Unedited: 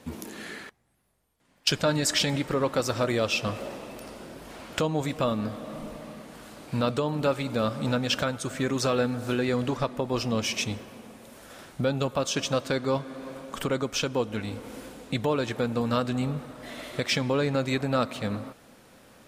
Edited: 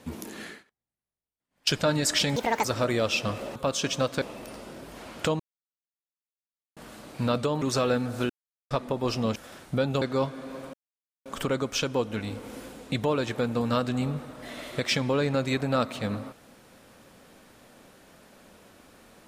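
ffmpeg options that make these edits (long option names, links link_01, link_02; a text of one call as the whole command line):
ffmpeg -i in.wav -filter_complex "[0:a]asplit=15[link_01][link_02][link_03][link_04][link_05][link_06][link_07][link_08][link_09][link_10][link_11][link_12][link_13][link_14][link_15];[link_01]atrim=end=0.64,asetpts=PTS-STARTPTS,afade=type=out:start_time=0.43:duration=0.21:silence=0.0668344[link_16];[link_02]atrim=start=0.64:end=1.5,asetpts=PTS-STARTPTS,volume=-23.5dB[link_17];[link_03]atrim=start=1.5:end=2.364,asetpts=PTS-STARTPTS,afade=type=in:duration=0.21:silence=0.0668344[link_18];[link_04]atrim=start=2.36:end=2.84,asetpts=PTS-STARTPTS,asetrate=74088,aresample=44100[link_19];[link_05]atrim=start=2.836:end=3.752[link_20];[link_06]atrim=start=12.078:end=12.742[link_21];[link_07]atrim=start=3.748:end=4.93,asetpts=PTS-STARTPTS,afade=type=out:start_time=1.178:duration=0.004:curve=hsin[link_22];[link_08]atrim=start=4.93:end=6.3,asetpts=PTS-STARTPTS,volume=0[link_23];[link_09]atrim=start=6.3:end=7.152,asetpts=PTS-STARTPTS,afade=type=in:duration=0.004:curve=hsin[link_24];[link_10]atrim=start=8.698:end=9.38,asetpts=PTS-STARTPTS,afade=type=out:start_time=0.678:duration=0.004:curve=hsin[link_25];[link_11]atrim=start=9.38:end=9.79,asetpts=PTS-STARTPTS,volume=0[link_26];[link_12]atrim=start=9.79:end=10.442,asetpts=PTS-STARTPTS,afade=type=in:duration=0.004:curve=hsin[link_27];[link_13]atrim=start=11.418:end=12.082[link_28];[link_14]atrim=start=12.738:end=13.46,asetpts=PTS-STARTPTS,afade=type=out:start_time=0.718:duration=0.004:curve=hsin,apad=pad_dur=0.52[link_29];[link_15]atrim=start=13.46,asetpts=PTS-STARTPTS,afade=type=in:duration=0.004:curve=hsin[link_30];[link_16][link_17][link_18]concat=n=3:v=0:a=1[link_31];[link_31][link_19]acrossfade=duration=0.004:curve1=hsin:curve2=hsin[link_32];[link_32][link_20]acrossfade=duration=0.004:curve1=hsin:curve2=hsin[link_33];[link_33][link_21]acrossfade=duration=0.004:curve1=hsin:curve2=hsin[link_34];[link_22][link_23][link_24]concat=n=3:v=0:a=1[link_35];[link_34][link_35]acrossfade=duration=0.004:curve1=hsin:curve2=hsin[link_36];[link_25][link_26][link_27]concat=n=3:v=0:a=1[link_37];[link_36][link_37]acrossfade=duration=0.004:curve1=hsin:curve2=hsin[link_38];[link_38][link_28]acrossfade=duration=0.004:curve1=hsin:curve2=hsin[link_39];[link_29][link_30]concat=n=2:v=0:a=1[link_40];[link_39][link_40]acrossfade=duration=0.004:curve1=hsin:curve2=hsin" out.wav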